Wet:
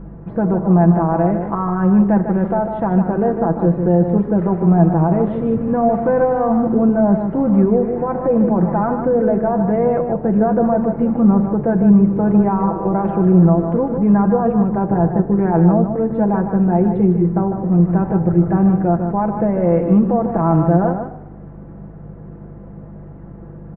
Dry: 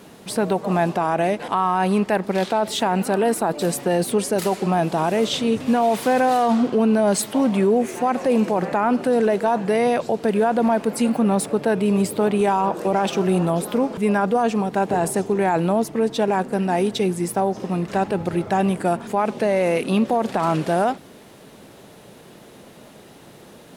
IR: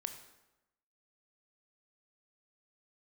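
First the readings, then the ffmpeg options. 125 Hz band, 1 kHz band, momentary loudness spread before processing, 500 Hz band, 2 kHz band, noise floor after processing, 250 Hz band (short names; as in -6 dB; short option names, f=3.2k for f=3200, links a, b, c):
+11.0 dB, 0.0 dB, 4 LU, +2.5 dB, -6.0 dB, -35 dBFS, +7.5 dB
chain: -filter_complex "[0:a]lowpass=f=1.6k:w=0.5412,lowpass=f=1.6k:w=1.3066,aemphasis=mode=reproduction:type=riaa,aeval=exprs='val(0)+0.0282*(sin(2*PI*50*n/s)+sin(2*PI*2*50*n/s)/2+sin(2*PI*3*50*n/s)/3+sin(2*PI*4*50*n/s)/4+sin(2*PI*5*50*n/s)/5)':c=same,asplit=2[a][b];[b]adelay=151.6,volume=-7dB,highshelf=f=4k:g=-3.41[c];[a][c]amix=inputs=2:normalize=0,asplit=2[d][e];[1:a]atrim=start_sample=2205,adelay=6[f];[e][f]afir=irnorm=-1:irlink=0,volume=-1.5dB[g];[d][g]amix=inputs=2:normalize=0,volume=-2.5dB"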